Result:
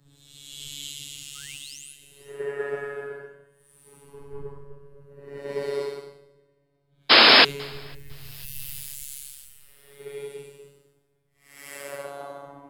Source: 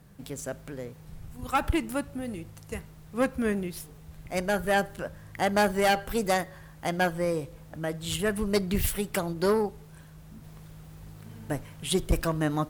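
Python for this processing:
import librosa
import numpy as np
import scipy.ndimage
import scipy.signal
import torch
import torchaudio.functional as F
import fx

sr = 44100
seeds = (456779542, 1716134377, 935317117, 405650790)

y = fx.doppler_pass(x, sr, speed_mps=13, closest_m=14.0, pass_at_s=4.47)
y = fx.recorder_agc(y, sr, target_db=-23.0, rise_db_per_s=35.0, max_gain_db=30)
y = scipy.signal.sosfilt(scipy.signal.butter(2, 42.0, 'highpass', fs=sr, output='sos'), y)
y = fx.peak_eq(y, sr, hz=170.0, db=-15.0, octaves=0.52)
y = fx.hum_notches(y, sr, base_hz=60, count=3)
y = fx.paulstretch(y, sr, seeds[0], factor=9.8, window_s=0.1, from_s=7.95)
y = fx.spec_paint(y, sr, seeds[1], shape='rise', start_s=1.35, length_s=0.58, low_hz=1200.0, high_hz=11000.0, level_db=-41.0)
y = fx.robotise(y, sr, hz=141.0)
y = fx.spec_paint(y, sr, seeds[2], shape='noise', start_s=7.09, length_s=0.36, low_hz=210.0, high_hz=5300.0, level_db=-21.0)
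y = fx.echo_feedback(y, sr, ms=502, feedback_pct=58, wet_db=-19.0)
y = fx.band_widen(y, sr, depth_pct=100)
y = F.gain(torch.from_numpy(y), -1.0).numpy()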